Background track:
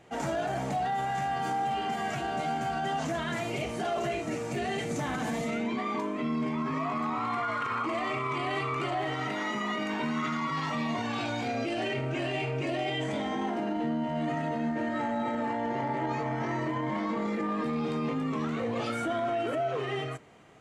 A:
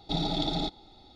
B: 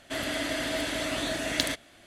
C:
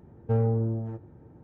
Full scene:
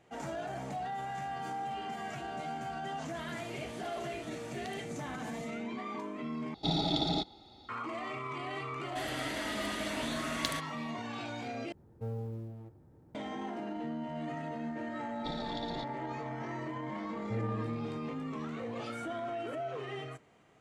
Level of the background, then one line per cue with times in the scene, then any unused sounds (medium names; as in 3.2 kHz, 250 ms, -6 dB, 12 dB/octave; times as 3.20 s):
background track -8 dB
3.06 s: add B -11 dB + compression 3:1, threshold -40 dBFS
6.54 s: replace with A -1 dB + high-pass 65 Hz
8.85 s: add B -7.5 dB
11.72 s: replace with C -14.5 dB + companding laws mixed up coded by mu
15.15 s: add A -9 dB + harmonic-percussive split harmonic -8 dB
17.01 s: add C -12 dB